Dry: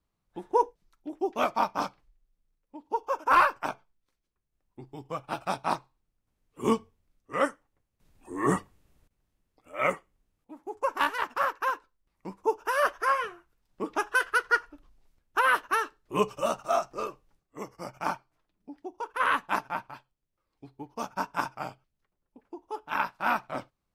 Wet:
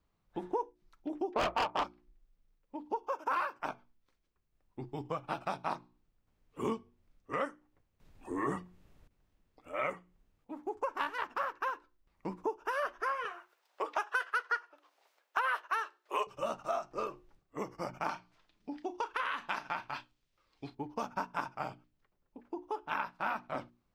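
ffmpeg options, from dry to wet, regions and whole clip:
-filter_complex "[0:a]asettb=1/sr,asplit=3[a][b][c];[a]atrim=end=1.344[d];[b]atrim=start=1.34:end=1.84,asetpts=PTS-STARTPTS,afade=t=in:d=0.004:c=qsin,afade=t=out:st=0.496:d=0.004:c=qsin,highpass=320,lowpass=6.1k,adynamicsmooth=sensitivity=4.5:basefreq=1k,aeval=exprs='0.251*sin(PI/2*3.98*val(0)/0.251)':c=same[e];[c]atrim=start=1.836[f];[d][e]acrossfade=d=0.004:c1=hsin:c2=qsin[g];[g][f]acrossfade=d=0.004:c1=qsin:c2=hsin,asettb=1/sr,asplit=3[h][i][j];[h]atrim=end=3.124[k];[i]atrim=start=3.12:end=3.6,asetpts=PTS-STARTPTS,afade=t=in:d=0.004:c=qsin,afade=t=out:st=0.476:d=0.004:c=qsin,highpass=130,highshelf=f=6.4k:g=5.5[l];[j]atrim=start=3.596[m];[k][l]acrossfade=d=0.004:c1=hsin:c2=qsin[n];[n][m]acrossfade=d=0.004:c1=qsin:c2=hsin,asettb=1/sr,asplit=3[o][p][q];[o]atrim=end=13.254[r];[p]atrim=start=13.25:end=16.27,asetpts=PTS-STARTPTS,afade=t=in:d=0.004:c=qsin,afade=t=out:st=3.016:d=0.004:c=qsin,acontrast=74,highpass=f=530:w=0.5412,highpass=f=530:w=1.3066[s];[q]atrim=start=16.266[t];[r][s]acrossfade=d=0.004:c1=hsin:c2=qsin[u];[u][t]acrossfade=d=0.004:c1=qsin:c2=hsin,asettb=1/sr,asplit=3[v][w][x];[v]atrim=end=18.094[y];[w]atrim=start=18.09:end=20.75,asetpts=PTS-STARTPTS,afade=t=in:d=0.004:c=qsin,afade=t=out:st=2.656:d=0.004:c=qsin,equalizer=f=4.1k:t=o:w=2.6:g=11.5,acompressor=threshold=-25dB:ratio=6:attack=3.2:release=140:knee=1:detection=peak,asplit=2[z][aa];[aa]adelay=34,volume=-12.5dB[ab];[z][ab]amix=inputs=2:normalize=0,atrim=end_sample=117306[ac];[x]atrim=start=20.746[ad];[y][ac]acrossfade=d=0.004:c1=hsin:c2=qsin[ae];[ae][ad]acrossfade=d=0.004:c1=qsin:c2=hsin,equalizer=f=11k:w=0.57:g=-9.5,bandreject=f=60:t=h:w=6,bandreject=f=120:t=h:w=6,bandreject=f=180:t=h:w=6,bandreject=f=240:t=h:w=6,bandreject=f=300:t=h:w=6,bandreject=f=360:t=h:w=6,acompressor=threshold=-37dB:ratio=4,volume=3.5dB"

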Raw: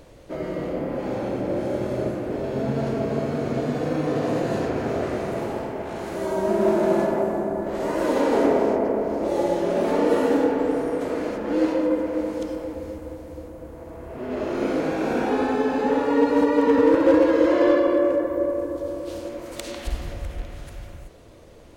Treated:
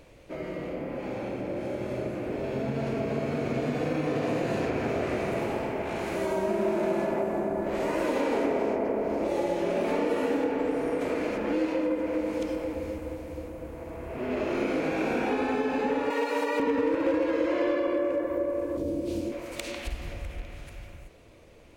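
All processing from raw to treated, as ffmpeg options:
-filter_complex "[0:a]asettb=1/sr,asplit=3[a][b][c];[a]atrim=end=16.104[d];[b]atrim=start=16.1:end=16.6,asetpts=PTS-STARTPTS,afade=t=in:d=0.004:c=qsin,afade=t=out:st=0.496:d=0.004:c=qsin,highpass=490,aemphasis=mode=production:type=cd[e];[c]atrim=start=16.596[f];[d][e]acrossfade=d=0.004:c1=hsin:c2=qsin[g];[g][f]acrossfade=d=0.004:c1=qsin:c2=hsin,asettb=1/sr,asplit=3[h][i][j];[h]atrim=end=18.774[k];[i]atrim=start=18.77:end=19.32,asetpts=PTS-STARTPTS,afade=t=in:d=0.004:c=qsin,afade=t=out:st=0.546:d=0.004:c=qsin,equalizer=f=220:t=o:w=2.6:g=11,acrossover=split=410|3000[l][m][n];[m]acompressor=threshold=-46dB:ratio=2:attack=3.2:release=140:knee=2.83:detection=peak[o];[l][o][n]amix=inputs=3:normalize=0,asplit=2[p][q];[q]adelay=24,volume=-5.5dB[r];[p][r]amix=inputs=2:normalize=0,atrim=end_sample=24255[s];[j]atrim=start=19.316[t];[k][s]acrossfade=d=0.004:c1=hsin:c2=qsin[u];[u][t]acrossfade=d=0.004:c1=qsin:c2=hsin,acompressor=threshold=-25dB:ratio=3,equalizer=f=2.4k:w=2.8:g=8.5,dynaudnorm=f=160:g=31:m=5dB,volume=-5.5dB"

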